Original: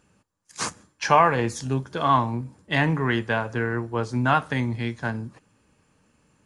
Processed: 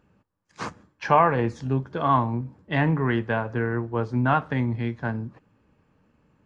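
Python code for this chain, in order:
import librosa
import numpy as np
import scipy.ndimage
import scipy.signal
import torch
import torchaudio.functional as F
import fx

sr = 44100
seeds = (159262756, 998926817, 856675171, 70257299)

y = fx.spacing_loss(x, sr, db_at_10k=28)
y = y * librosa.db_to_amplitude(1.5)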